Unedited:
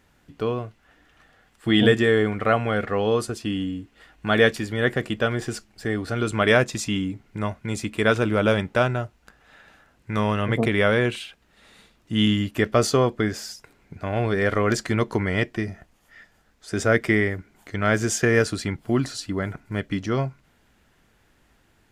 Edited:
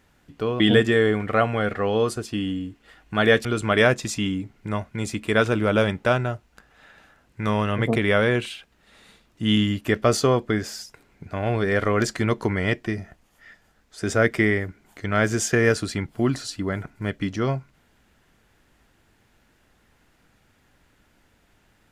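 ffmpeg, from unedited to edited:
ffmpeg -i in.wav -filter_complex "[0:a]asplit=3[link_01][link_02][link_03];[link_01]atrim=end=0.602[link_04];[link_02]atrim=start=1.718:end=4.572[link_05];[link_03]atrim=start=6.148[link_06];[link_04][link_05]acrossfade=duration=0.004:curve1=hsin:curve2=hsin[link_07];[link_07][link_06]acrossfade=duration=0.004:curve1=hsin:curve2=hsin" out.wav

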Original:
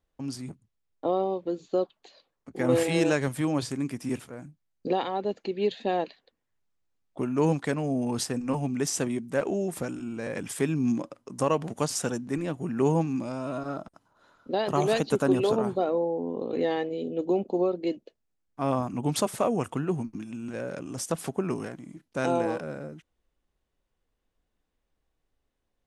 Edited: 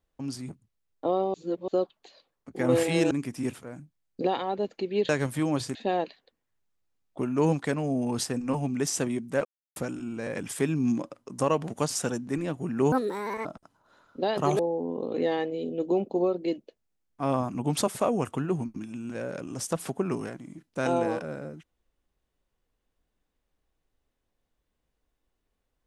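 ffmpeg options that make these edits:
ffmpeg -i in.wav -filter_complex "[0:a]asplit=11[link_01][link_02][link_03][link_04][link_05][link_06][link_07][link_08][link_09][link_10][link_11];[link_01]atrim=end=1.342[link_12];[link_02]atrim=start=1.338:end=1.682,asetpts=PTS-STARTPTS,areverse[link_13];[link_03]atrim=start=1.678:end=3.112[link_14];[link_04]atrim=start=3.768:end=5.752[link_15];[link_05]atrim=start=3.108:end=3.772[link_16];[link_06]atrim=start=5.748:end=9.45,asetpts=PTS-STARTPTS,afade=type=out:start_time=3.698:duration=0.004:curve=hsin[link_17];[link_07]atrim=start=9.45:end=9.76,asetpts=PTS-STARTPTS,volume=0[link_18];[link_08]atrim=start=9.76:end=12.924,asetpts=PTS-STARTPTS,afade=type=in:duration=0.004:curve=hsin[link_19];[link_09]atrim=start=12.92:end=13.76,asetpts=PTS-STARTPTS,asetrate=69678,aresample=44100[link_20];[link_10]atrim=start=13.756:end=14.902[link_21];[link_11]atrim=start=15.978[link_22];[link_12][link_13]acrossfade=duration=0.004:curve1=hsin:curve2=hsin[link_23];[link_23][link_14]acrossfade=duration=0.004:curve1=hsin:curve2=hsin[link_24];[link_24][link_15]acrossfade=duration=0.004:curve1=hsin:curve2=hsin[link_25];[link_25][link_16]acrossfade=duration=0.004:curve1=hsin:curve2=hsin[link_26];[link_17][link_18][link_19]concat=n=3:v=0:a=1[link_27];[link_26][link_27]acrossfade=duration=0.004:curve1=hsin:curve2=hsin[link_28];[link_28][link_20]acrossfade=duration=0.004:curve1=hsin:curve2=hsin[link_29];[link_29][link_21]acrossfade=duration=0.004:curve1=hsin:curve2=hsin[link_30];[link_30][link_22]acrossfade=duration=0.004:curve1=hsin:curve2=hsin" out.wav

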